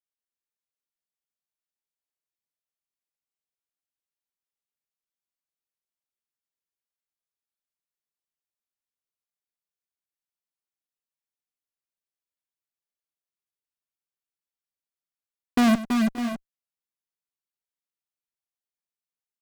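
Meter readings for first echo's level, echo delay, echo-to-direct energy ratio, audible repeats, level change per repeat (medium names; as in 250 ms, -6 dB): -15.0 dB, 97 ms, -3.0 dB, 4, no regular repeats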